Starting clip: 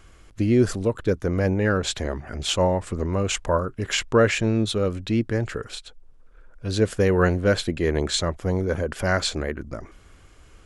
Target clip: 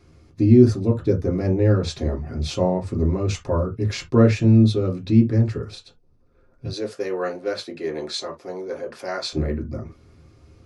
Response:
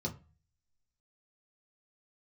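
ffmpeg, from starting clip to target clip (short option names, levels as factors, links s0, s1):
-filter_complex "[0:a]asettb=1/sr,asplit=3[s0][s1][s2];[s0]atrim=end=6.664[s3];[s1]atrim=start=6.66:end=9.33,asetpts=PTS-STARTPTS,afade=t=in:d=0.004:c=qsin,afade=t=out:st=2.666:d=0.004:c=qsin,highpass=560[s4];[s2]atrim=start=9.326[s5];[s3][s4]acrossfade=d=0.004:c1=hsin:c2=qsin[s6];[s6][s5]acrossfade=d=0.004:c1=qsin:c2=hsin[s7];[1:a]atrim=start_sample=2205,atrim=end_sample=3528[s8];[s7][s8]afir=irnorm=-1:irlink=0,volume=0.531"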